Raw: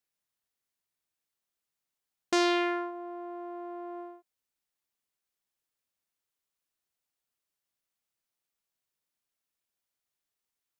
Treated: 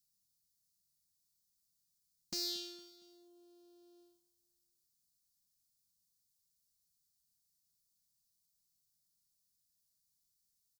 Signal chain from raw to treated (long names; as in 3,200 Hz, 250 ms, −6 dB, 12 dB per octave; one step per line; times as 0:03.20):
elliptic band-stop filter 190–4,500 Hz, stop band 40 dB
soft clipping −38 dBFS, distortion −5 dB
on a send: repeating echo 230 ms, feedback 41%, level −18 dB
on the sum: level +8 dB